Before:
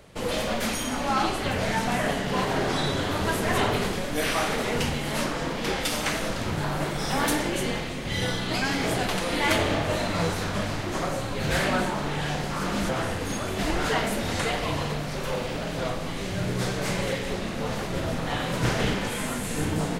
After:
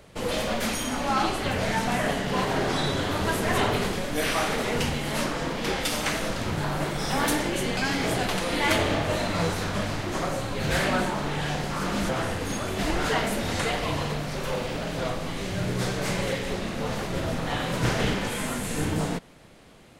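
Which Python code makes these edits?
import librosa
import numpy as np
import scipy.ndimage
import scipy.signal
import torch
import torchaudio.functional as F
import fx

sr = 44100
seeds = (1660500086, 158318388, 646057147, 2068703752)

y = fx.edit(x, sr, fx.cut(start_s=7.77, length_s=0.8), tone=tone)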